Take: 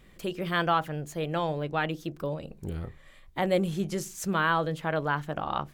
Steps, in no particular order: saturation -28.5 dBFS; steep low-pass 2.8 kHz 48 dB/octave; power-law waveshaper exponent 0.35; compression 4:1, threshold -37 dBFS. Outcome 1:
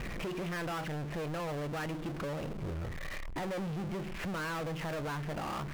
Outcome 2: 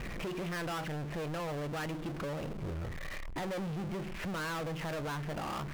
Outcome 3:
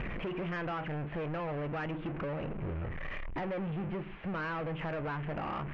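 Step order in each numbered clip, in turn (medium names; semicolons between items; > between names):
saturation > steep low-pass > power-law waveshaper > compression; steep low-pass > saturation > power-law waveshaper > compression; power-law waveshaper > compression > steep low-pass > saturation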